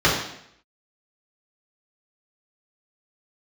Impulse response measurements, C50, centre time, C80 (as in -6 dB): 3.5 dB, 43 ms, 7.0 dB